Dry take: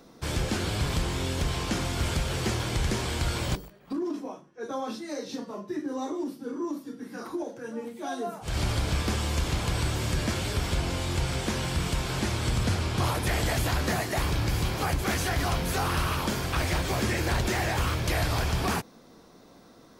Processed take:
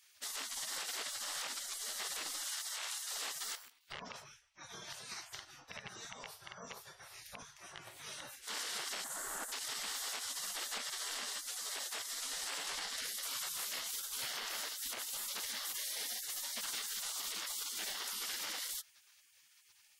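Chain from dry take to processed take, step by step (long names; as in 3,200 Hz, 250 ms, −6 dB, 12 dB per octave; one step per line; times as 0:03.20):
loose part that buzzes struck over −35 dBFS, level −24 dBFS
gate on every frequency bin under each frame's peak −25 dB weak
0:02.46–0:03.11: high-pass filter 710 Hz 12 dB per octave
gate on every frequency bin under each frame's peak −25 dB strong
0:09.04–0:09.52: flat-topped bell 3,500 Hz −15 dB
brickwall limiter −33 dBFS, peak gain reduction 10 dB
level +2.5 dB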